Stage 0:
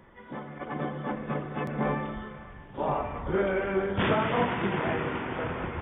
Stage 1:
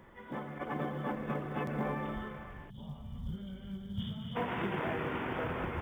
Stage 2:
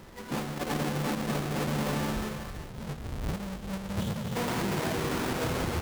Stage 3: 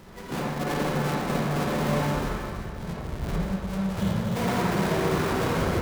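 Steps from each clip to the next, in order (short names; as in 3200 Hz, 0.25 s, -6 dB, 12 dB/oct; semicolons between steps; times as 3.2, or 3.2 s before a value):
compressor 4:1, threshold -30 dBFS, peak gain reduction 8.5 dB; spectral gain 2.7–4.36, 250–2900 Hz -23 dB; companded quantiser 8-bit; gain -1.5 dB
half-waves squared off; limiter -28.5 dBFS, peak gain reduction 6 dB; gain +3 dB
reverb RT60 0.95 s, pre-delay 43 ms, DRR -3 dB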